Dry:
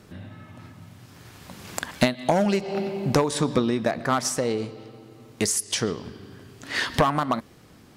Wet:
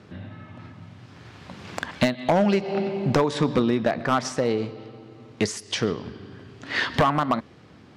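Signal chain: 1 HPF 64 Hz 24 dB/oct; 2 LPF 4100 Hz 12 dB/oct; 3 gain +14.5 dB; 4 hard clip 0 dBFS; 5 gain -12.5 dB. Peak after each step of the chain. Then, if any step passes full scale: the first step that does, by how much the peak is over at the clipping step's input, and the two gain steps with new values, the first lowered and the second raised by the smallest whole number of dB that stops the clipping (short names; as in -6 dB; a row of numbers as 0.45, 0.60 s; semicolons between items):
-4.5, -4.5, +10.0, 0.0, -12.5 dBFS; step 3, 10.0 dB; step 3 +4.5 dB, step 5 -2.5 dB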